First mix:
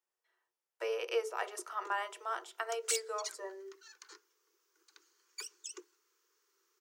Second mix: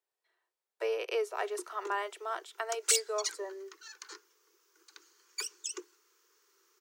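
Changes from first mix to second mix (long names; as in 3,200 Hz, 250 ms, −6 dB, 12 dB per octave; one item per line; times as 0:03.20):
background +7.0 dB
reverb: off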